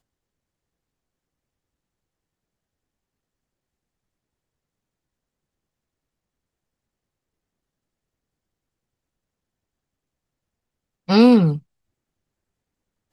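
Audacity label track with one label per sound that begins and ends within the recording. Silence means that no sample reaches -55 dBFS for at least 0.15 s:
11.080000	11.630000	sound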